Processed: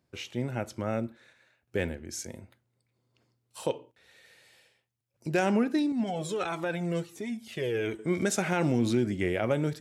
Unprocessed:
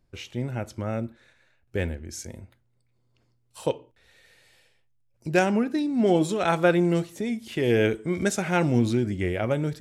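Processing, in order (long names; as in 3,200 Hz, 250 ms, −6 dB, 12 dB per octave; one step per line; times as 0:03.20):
high-pass filter 90 Hz
low-shelf EQ 120 Hz −6 dB
brickwall limiter −16 dBFS, peak gain reduction 8 dB
0:05.92–0:07.99: flanger whose copies keep moving one way falling 1.5 Hz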